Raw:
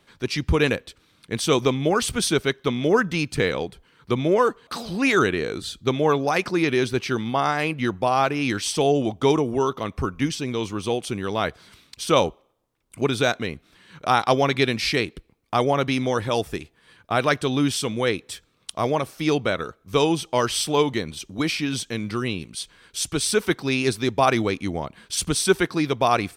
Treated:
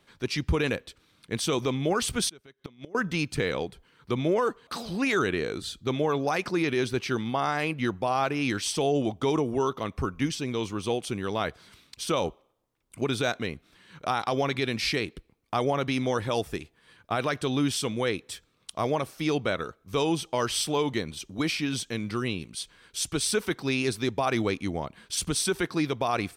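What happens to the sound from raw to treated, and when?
2.29–2.95 s: inverted gate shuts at -17 dBFS, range -27 dB
whole clip: peak limiter -12.5 dBFS; trim -3.5 dB

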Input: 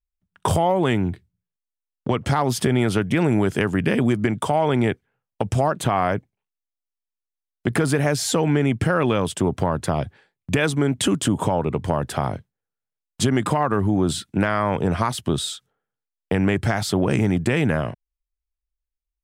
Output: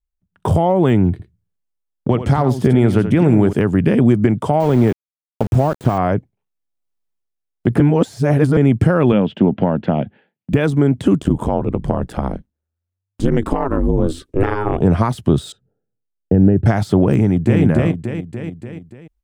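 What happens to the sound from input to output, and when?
1.11–3.53 s: delay 83 ms -10.5 dB
4.60–5.98 s: small samples zeroed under -26.5 dBFS
7.80–8.57 s: reverse
9.12–10.53 s: cabinet simulation 190–3200 Hz, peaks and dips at 210 Hz +8 dB, 390 Hz -4 dB, 1.1 kHz -8 dB, 2.9 kHz +6 dB
11.18–14.80 s: ring modulator 38 Hz -> 230 Hz
15.52–16.66 s: boxcar filter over 40 samples
17.18–17.62 s: echo throw 290 ms, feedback 40%, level -1 dB
whole clip: de-esser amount 60%; tilt shelf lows +6 dB, about 850 Hz; level rider; trim -1 dB

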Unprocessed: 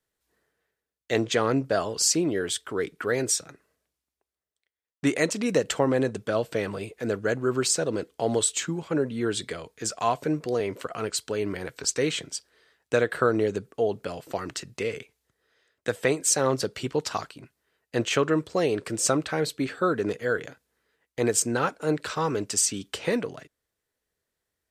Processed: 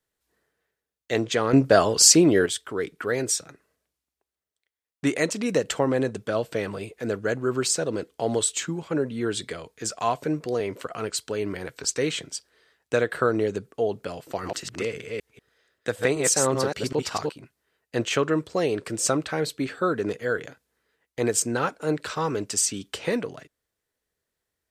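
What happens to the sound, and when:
1.53–2.46 s: gain +8 dB
14.24–17.35 s: chunks repeated in reverse 192 ms, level -3 dB

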